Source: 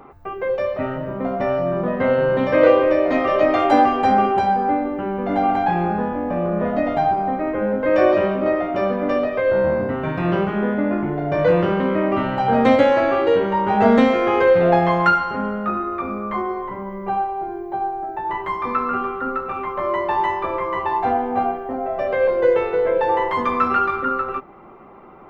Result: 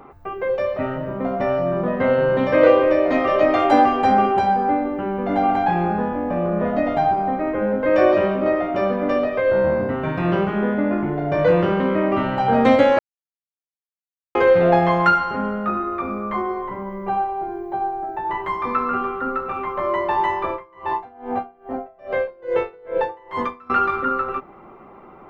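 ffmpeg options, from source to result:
ffmpeg -i in.wav -filter_complex "[0:a]asettb=1/sr,asplit=3[link_01][link_02][link_03];[link_01]atrim=end=20.504[link_04];[link_02]atrim=start=20.5:end=23.7,asetpts=PTS-STARTPTS,afade=type=in:duration=0.004:curve=qsin,afade=type=out:start_time=3.196:duration=0.004:curve=qsin,aeval=exprs='val(0)*pow(10,-28*(0.5-0.5*cos(2*PI*2.4*n/s))/20)':channel_layout=same[link_05];[link_03]atrim=start=23.696[link_06];[link_04][link_05]acrossfade=duration=0.004:curve1=hsin:curve2=qsin[link_07];[link_07][link_06]acrossfade=duration=0.004:curve1=qsin:curve2=hsin,asplit=3[link_08][link_09][link_10];[link_08]atrim=end=12.99,asetpts=PTS-STARTPTS,afade=type=out:start_time=12.986:duration=0.004:curve=hsin[link_11];[link_09]atrim=start=12.99:end=14.35,asetpts=PTS-STARTPTS,volume=0[link_12];[link_10]atrim=start=14.35,asetpts=PTS-STARTPTS,afade=type=in:duration=0.004:curve=hsin[link_13];[link_11][link_12][link_13]concat=n=3:v=0:a=1" out.wav

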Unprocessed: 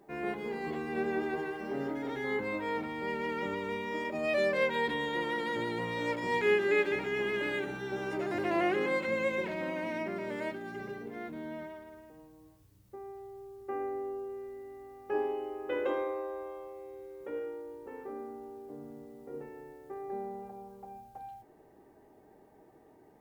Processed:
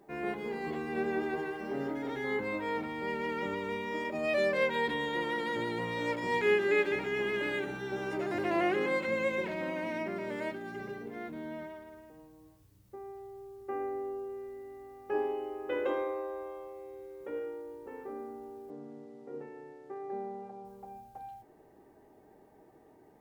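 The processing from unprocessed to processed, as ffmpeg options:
ffmpeg -i in.wav -filter_complex "[0:a]asettb=1/sr,asplit=3[link_01][link_02][link_03];[link_01]atrim=end=18.704[link_04];[link_02]atrim=start=18.7:end=20.65,asetpts=PTS-STARTPTS,afade=type=in:duration=0.004:curve=qsin,afade=type=out:start_time=1.946:duration=0.004:curve=qsin,highpass=130,lowpass=6300[link_05];[link_03]atrim=start=20.646[link_06];[link_04][link_05]acrossfade=duration=0.004:curve1=hsin:curve2=qsin[link_07];[link_07][link_06]acrossfade=duration=0.004:curve1=qsin:curve2=hsin" out.wav

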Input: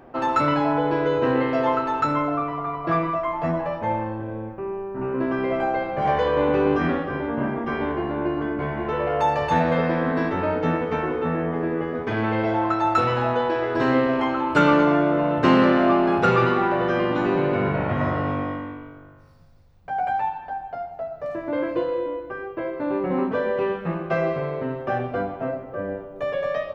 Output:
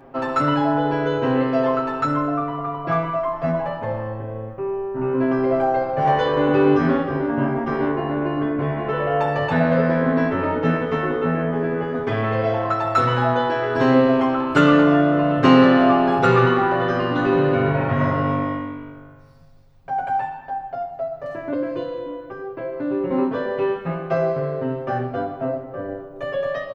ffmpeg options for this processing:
ffmpeg -i in.wav -filter_complex "[0:a]asettb=1/sr,asplit=3[link_01][link_02][link_03];[link_01]atrim=end=7.884[link_04];[link_02]atrim=start=7.88:end=10.65,asetpts=PTS-STARTPTS,afade=type=in:duration=0.004:curve=qsin,afade=type=out:start_time=2.766:duration=0.004:curve=qsin,highshelf=frequency=5400:gain=-11[link_05];[link_03]atrim=start=10.646[link_06];[link_04][link_05]acrossfade=duration=0.004:curve1=hsin:curve2=qsin[link_07];[link_07][link_06]acrossfade=duration=0.004:curve1=qsin:curve2=hsin,asettb=1/sr,asplit=3[link_08][link_09][link_10];[link_08]atrim=end=21.534[link_11];[link_09]atrim=start=21.53:end=23.11,asetpts=PTS-STARTPTS,afade=type=in:duration=0.004:curve=qsin,afade=type=out:start_time=1.576:duration=0.004:curve=qsin,acrossover=split=480|3000[link_12][link_13][link_14];[link_13]acompressor=threshold=-34dB:ratio=3:attack=3.2:release=140:knee=2.83:detection=peak[link_15];[link_12][link_15][link_14]amix=inputs=3:normalize=0[link_16];[link_10]atrim=start=23.106[link_17];[link_11][link_16]acrossfade=duration=0.004:curve1=hsin:curve2=qsin[link_18];[link_18][link_17]acrossfade=duration=0.004:curve1=qsin:curve2=hsin,aecho=1:1:7.4:0.78,dynaudnorm=framelen=620:gausssize=21:maxgain=11.5dB,volume=-1dB" out.wav

